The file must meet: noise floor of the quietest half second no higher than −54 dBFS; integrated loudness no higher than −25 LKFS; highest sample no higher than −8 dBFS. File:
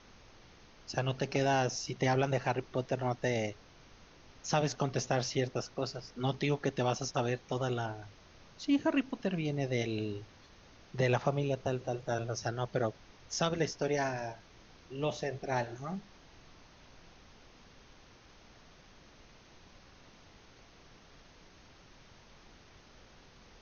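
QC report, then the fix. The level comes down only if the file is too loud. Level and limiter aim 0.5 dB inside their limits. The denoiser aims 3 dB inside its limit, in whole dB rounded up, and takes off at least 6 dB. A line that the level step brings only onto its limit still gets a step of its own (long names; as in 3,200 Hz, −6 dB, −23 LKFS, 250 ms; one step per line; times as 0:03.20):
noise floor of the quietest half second −58 dBFS: in spec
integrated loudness −34.0 LKFS: in spec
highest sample −15.5 dBFS: in spec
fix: no processing needed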